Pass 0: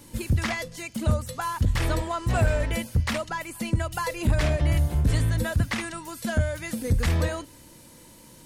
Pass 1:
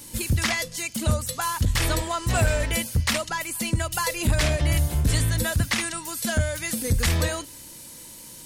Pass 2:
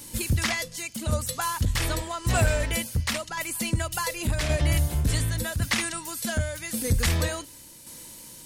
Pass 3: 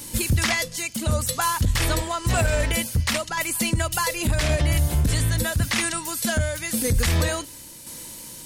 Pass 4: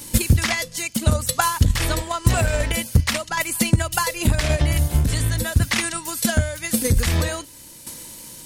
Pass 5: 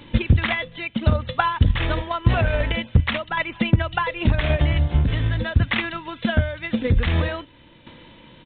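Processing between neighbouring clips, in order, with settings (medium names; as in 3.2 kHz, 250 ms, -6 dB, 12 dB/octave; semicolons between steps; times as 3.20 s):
treble shelf 2.6 kHz +11.5 dB
tremolo saw down 0.89 Hz, depth 50%
peak limiter -17.5 dBFS, peak gain reduction 7 dB; trim +5.5 dB
transient shaper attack +9 dB, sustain -3 dB
resampled via 8 kHz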